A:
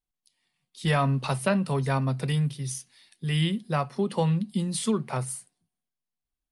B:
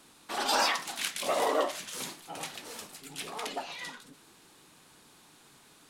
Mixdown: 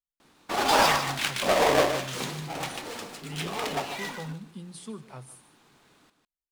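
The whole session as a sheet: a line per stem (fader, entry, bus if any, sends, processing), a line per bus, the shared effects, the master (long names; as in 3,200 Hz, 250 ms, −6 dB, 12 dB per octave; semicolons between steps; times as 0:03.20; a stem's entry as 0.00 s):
−14.0 dB, 0.00 s, no send, echo send −16.5 dB, no processing
+2.0 dB, 0.20 s, no send, echo send −9 dB, each half-wave held at its own peak; noise gate −49 dBFS, range −8 dB; high-shelf EQ 9,700 Hz −10.5 dB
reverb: not used
echo: single-tap delay 151 ms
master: no processing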